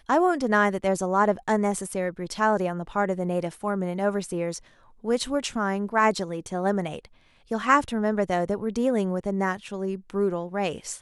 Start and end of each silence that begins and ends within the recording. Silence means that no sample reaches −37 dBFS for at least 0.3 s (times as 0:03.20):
0:04.58–0:05.04
0:07.05–0:07.51